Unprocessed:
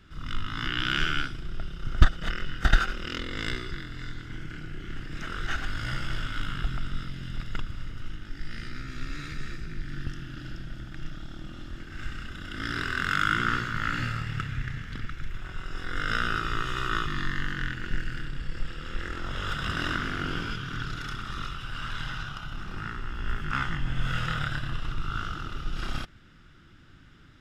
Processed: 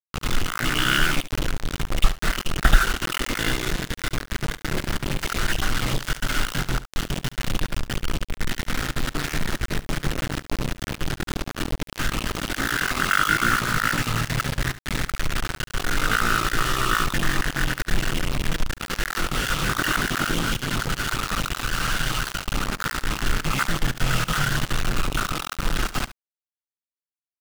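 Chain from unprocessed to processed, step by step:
time-frequency cells dropped at random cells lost 27%
low-pass filter 3,600 Hz 24 dB per octave
parametric band 79 Hz −13.5 dB 0.45 octaves
in parallel at +2 dB: downward compressor 12 to 1, threshold −37 dBFS, peak gain reduction 24 dB
on the sum: bit reduction 5 bits
on a send: single-tap delay 71 ms −16 dB
on the sum: highs frequency-modulated by the lows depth 0.13 ms
level +5 dB

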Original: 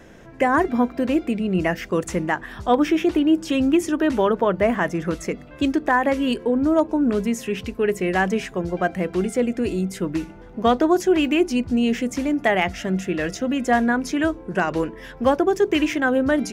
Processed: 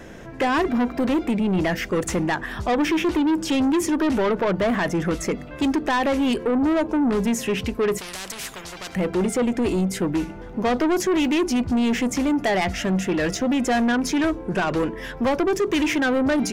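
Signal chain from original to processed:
in parallel at −1 dB: brickwall limiter −15 dBFS, peak gain reduction 7.5 dB
on the sum: soft clipping −17 dBFS, distortion −10 dB
0:07.98–0:08.95: every bin compressed towards the loudest bin 4 to 1

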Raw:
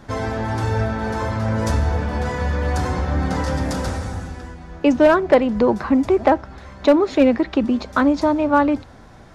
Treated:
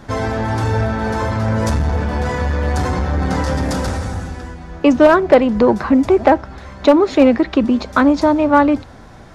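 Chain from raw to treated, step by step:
saturating transformer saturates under 260 Hz
level +4.5 dB

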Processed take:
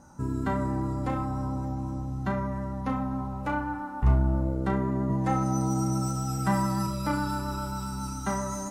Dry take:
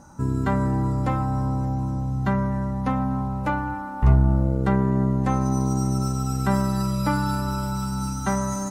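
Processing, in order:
0:05.09–0:06.87: comb filter 6.2 ms, depth 90%
pitch vibrato 7.4 Hz 19 cents
flutter between parallel walls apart 5.8 metres, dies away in 0.3 s
level −5.5 dB

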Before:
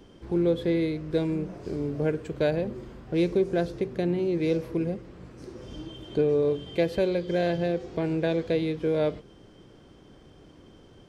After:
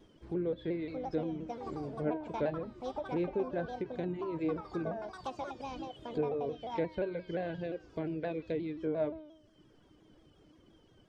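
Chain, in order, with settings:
reverb reduction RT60 0.93 s
delay with pitch and tempo change per echo 733 ms, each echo +7 semitones, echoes 2, each echo −6 dB
tuned comb filter 310 Hz, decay 0.77 s, mix 80%
treble cut that deepens with the level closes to 2,000 Hz, closed at −35.5 dBFS
pitch modulation by a square or saw wave saw down 5.7 Hz, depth 100 cents
level +4.5 dB

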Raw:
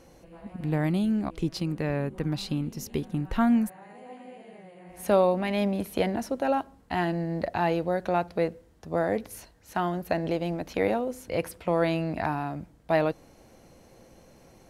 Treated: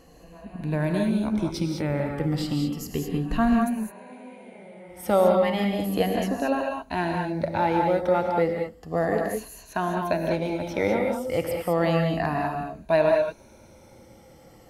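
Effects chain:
rippled gain that drifts along the octave scale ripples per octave 1.5, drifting −0.33 Hz, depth 10 dB
reverb whose tail is shaped and stops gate 230 ms rising, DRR 1.5 dB

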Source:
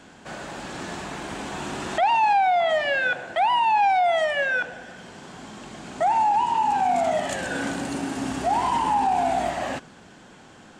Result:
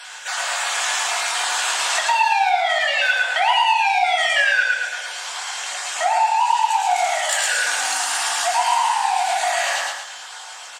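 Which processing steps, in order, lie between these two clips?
time-frequency cells dropped at random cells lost 21%
in parallel at −4 dB: soft clipping −25 dBFS, distortion −9 dB
on the sum: high-shelf EQ 2,300 Hz +11.5 dB
on a send: repeating echo 111 ms, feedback 36%, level −3 dB
on the sum: downward compressor 3 to 1, threshold −22 dBFS, peak gain reduction 8.5 dB
high-pass filter 780 Hz 24 dB per octave
rectangular room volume 330 cubic metres, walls furnished, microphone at 1.8 metres
level +3.5 dB

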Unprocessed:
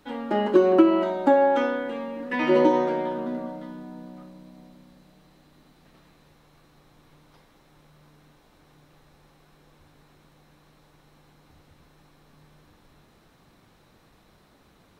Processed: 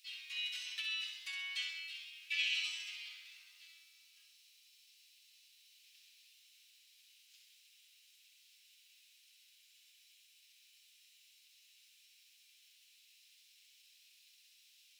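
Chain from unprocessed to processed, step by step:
pitch-shifted copies added +5 semitones −3 dB
elliptic high-pass filter 2,600 Hz, stop band 80 dB
flutter between parallel walls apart 11.1 metres, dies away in 0.65 s

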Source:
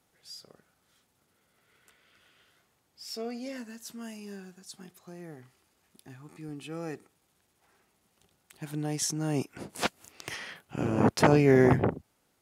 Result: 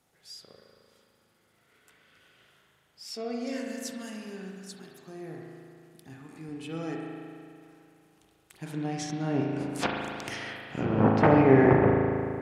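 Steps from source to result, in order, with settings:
0:03.47–0:04.10: high-shelf EQ 3,600 Hz +7.5 dB
treble cut that deepens with the level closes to 2,200 Hz, closed at −24.5 dBFS
spring reverb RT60 2.4 s, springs 37 ms, chirp 35 ms, DRR −0.5 dB

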